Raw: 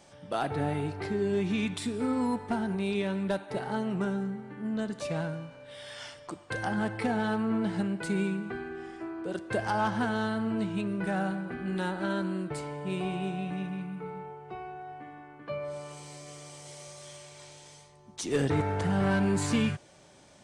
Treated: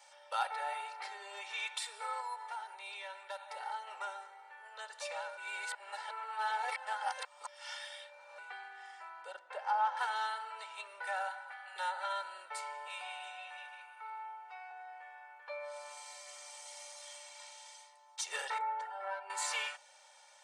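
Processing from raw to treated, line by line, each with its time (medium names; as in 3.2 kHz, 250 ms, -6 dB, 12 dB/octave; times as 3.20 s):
2.20–3.87 s: compression 2:1, threshold -34 dBFS
5.37–8.38 s: reverse
9.32–9.97 s: low-pass 1.2 kHz 6 dB/octave
11.28–11.76 s: Chebyshev band-stop 120–710 Hz
12.87–14.71 s: high-pass 640 Hz
18.58–19.30 s: spectral contrast enhancement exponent 1.5
whole clip: steep high-pass 630 Hz 48 dB/octave; comb 2.2 ms, depth 98%; trim -4 dB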